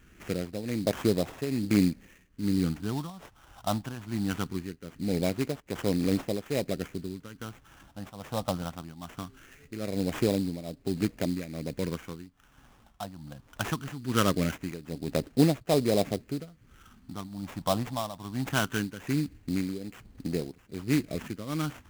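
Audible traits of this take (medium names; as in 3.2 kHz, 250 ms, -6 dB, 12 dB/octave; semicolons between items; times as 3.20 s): tremolo triangle 1.2 Hz, depth 85%; phasing stages 4, 0.21 Hz, lowest notch 400–1400 Hz; aliases and images of a low sample rate 4.5 kHz, jitter 20%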